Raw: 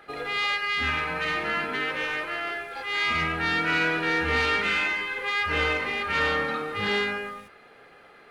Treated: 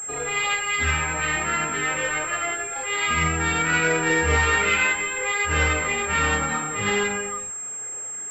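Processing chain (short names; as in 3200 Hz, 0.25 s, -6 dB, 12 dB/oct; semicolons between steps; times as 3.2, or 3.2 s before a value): chorus voices 6, 0.89 Hz, delay 26 ms, depth 1.2 ms; pulse-width modulation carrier 7500 Hz; gain +6.5 dB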